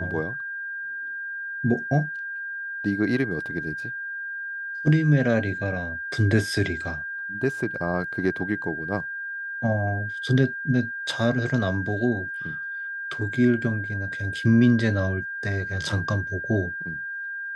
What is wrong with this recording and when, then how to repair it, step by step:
tone 1600 Hz -30 dBFS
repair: notch 1600 Hz, Q 30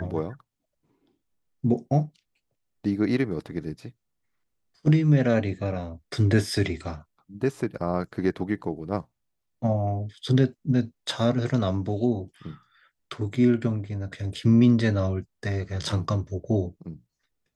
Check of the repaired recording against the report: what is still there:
none

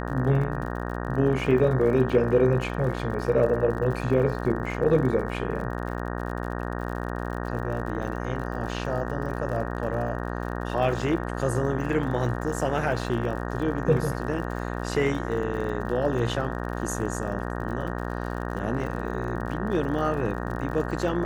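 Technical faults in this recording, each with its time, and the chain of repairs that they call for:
buzz 60 Hz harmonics 31 -31 dBFS
crackle 58/s -35 dBFS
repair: de-click; de-hum 60 Hz, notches 31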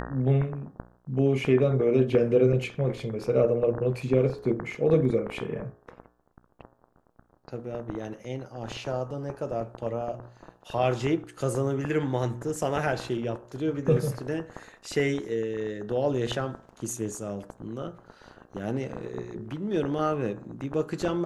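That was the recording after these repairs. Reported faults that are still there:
none

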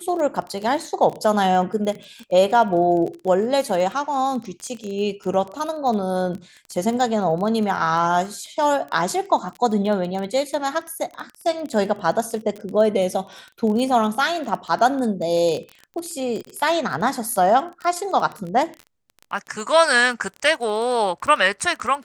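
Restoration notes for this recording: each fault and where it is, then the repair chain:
crackle 20/s -27 dBFS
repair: de-click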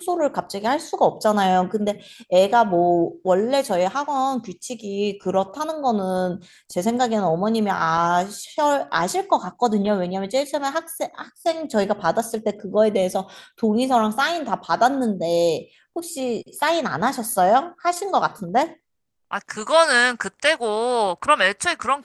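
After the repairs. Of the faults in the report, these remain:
none

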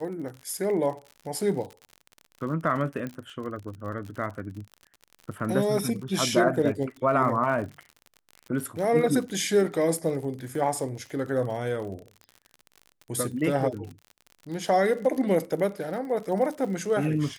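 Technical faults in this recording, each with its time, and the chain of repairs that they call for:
crackle 52/s -35 dBFS
3.07 pop -22 dBFS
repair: de-click

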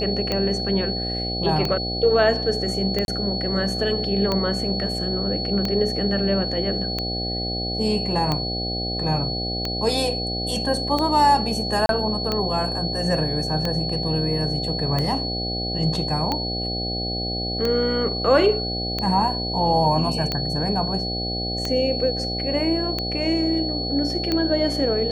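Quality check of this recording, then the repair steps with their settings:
buzz 60 Hz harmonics 13 -29 dBFS
tick 45 rpm -10 dBFS
tone 4400 Hz -27 dBFS
3.05–3.08 gap 31 ms
11.86–11.89 gap 32 ms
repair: de-click; de-hum 60 Hz, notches 13; notch 4400 Hz, Q 30; interpolate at 3.05, 31 ms; interpolate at 11.86, 32 ms

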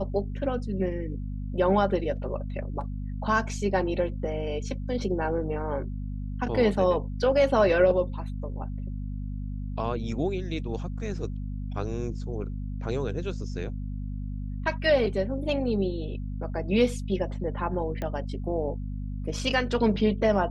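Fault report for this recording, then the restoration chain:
hum 50 Hz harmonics 5 -33 dBFS
18.02 pop -20 dBFS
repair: de-click; de-hum 50 Hz, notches 5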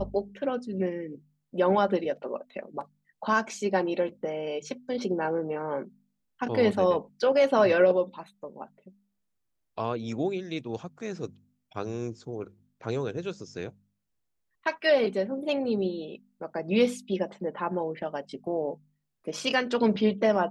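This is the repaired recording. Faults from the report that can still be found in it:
none

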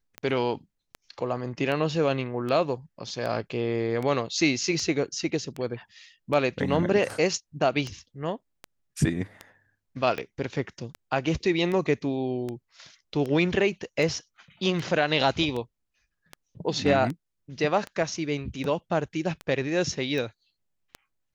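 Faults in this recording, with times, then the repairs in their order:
tick 78 rpm -20 dBFS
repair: de-click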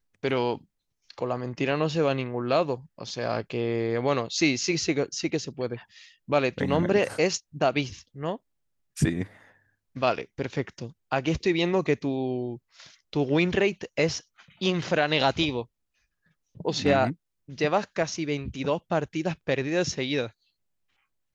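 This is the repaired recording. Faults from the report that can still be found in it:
none

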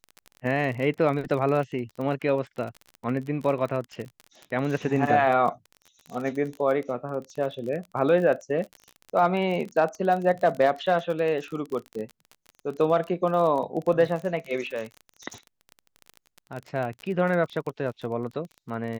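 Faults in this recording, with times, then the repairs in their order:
crackle 33/s -31 dBFS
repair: de-click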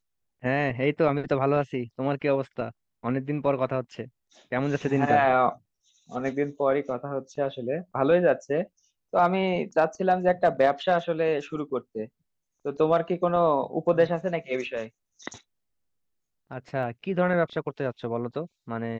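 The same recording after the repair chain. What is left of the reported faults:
none

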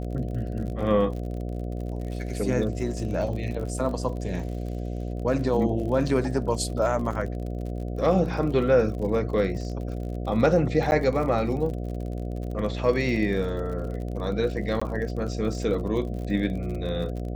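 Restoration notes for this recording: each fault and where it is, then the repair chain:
buzz 60 Hz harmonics 12 -31 dBFS
crackle 50/s -34 dBFS
10.91–10.92 gap 9.9 ms
14.8–14.81 gap 15 ms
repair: de-click; de-hum 60 Hz, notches 12; interpolate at 10.91, 9.9 ms; interpolate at 14.8, 15 ms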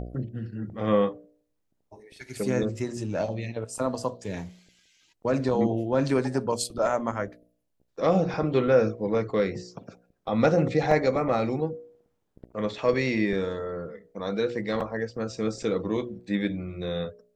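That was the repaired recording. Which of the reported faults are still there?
none

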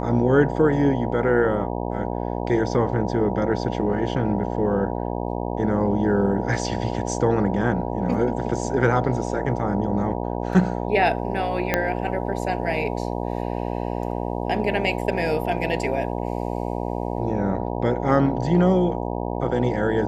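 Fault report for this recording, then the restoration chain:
buzz 60 Hz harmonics 16 -27 dBFS
11.74 pop -5 dBFS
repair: de-click; de-hum 60 Hz, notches 16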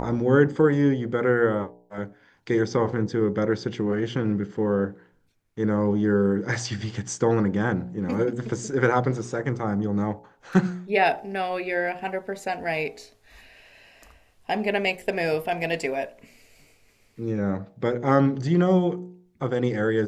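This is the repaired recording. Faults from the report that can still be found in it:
11.74 pop

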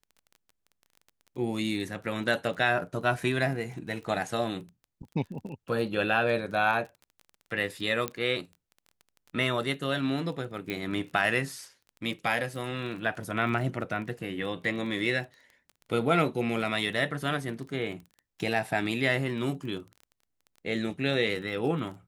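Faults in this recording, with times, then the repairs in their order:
crackle 22/s -39 dBFS
8.08 pop -14 dBFS
10.7 pop -19 dBFS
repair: de-click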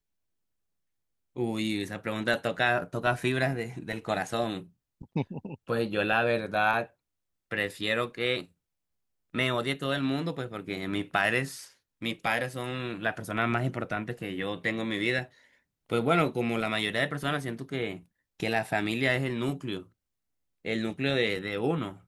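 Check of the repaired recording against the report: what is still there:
none

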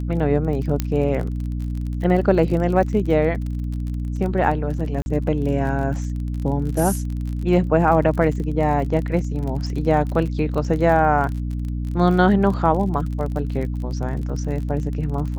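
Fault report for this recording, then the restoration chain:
crackle 35/s -28 dBFS
hum 60 Hz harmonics 5 -25 dBFS
0.8 pop -8 dBFS
5.02–5.06 gap 41 ms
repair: de-click; de-hum 60 Hz, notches 5; interpolate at 5.02, 41 ms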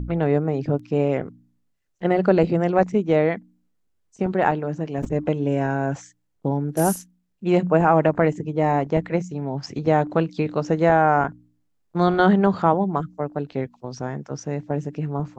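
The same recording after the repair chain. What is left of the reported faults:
0.8 pop

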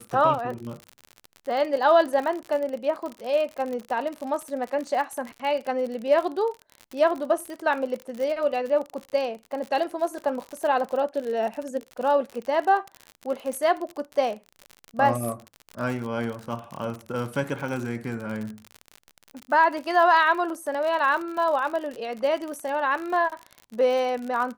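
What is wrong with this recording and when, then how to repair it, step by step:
crackle 54/s -30 dBFS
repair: de-click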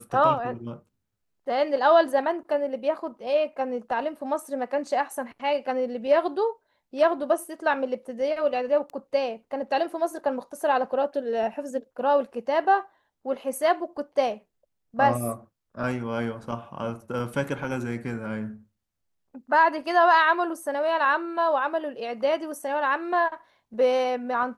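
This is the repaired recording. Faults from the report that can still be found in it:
none

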